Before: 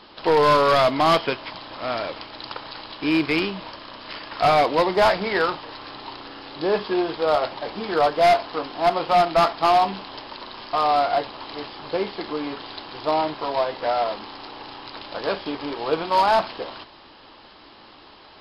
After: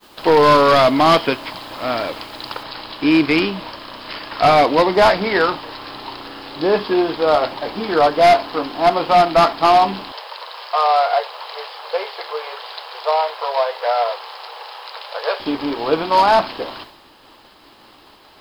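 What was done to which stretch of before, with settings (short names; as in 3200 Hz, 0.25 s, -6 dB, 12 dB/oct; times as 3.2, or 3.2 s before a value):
2.63 noise floor step -55 dB -63 dB
10.12–15.4 elliptic high-pass 460 Hz
whole clip: dynamic EQ 270 Hz, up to +5 dB, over -43 dBFS, Q 3.8; expander -42 dBFS; gain +5 dB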